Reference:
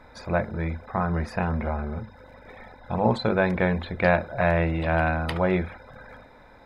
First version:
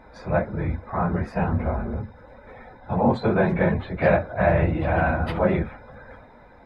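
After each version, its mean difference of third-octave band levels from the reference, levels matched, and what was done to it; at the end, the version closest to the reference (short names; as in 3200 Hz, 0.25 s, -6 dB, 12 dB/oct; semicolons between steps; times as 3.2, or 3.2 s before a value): 3.0 dB: phase scrambler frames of 50 ms; high shelf 2900 Hz -12 dB; gain +2.5 dB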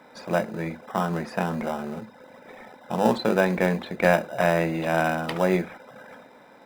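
5.5 dB: HPF 170 Hz 24 dB/oct; in parallel at -10.5 dB: sample-rate reducer 2200 Hz, jitter 0%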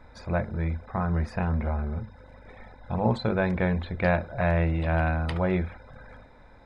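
1.5 dB: low shelf 140 Hz +9 dB; downsampling 22050 Hz; gain -4.5 dB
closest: third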